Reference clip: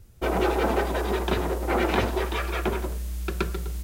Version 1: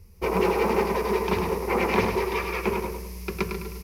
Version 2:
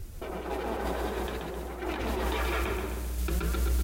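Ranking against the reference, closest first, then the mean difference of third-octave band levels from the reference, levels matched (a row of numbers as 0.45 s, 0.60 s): 1, 2; 3.5 dB, 6.0 dB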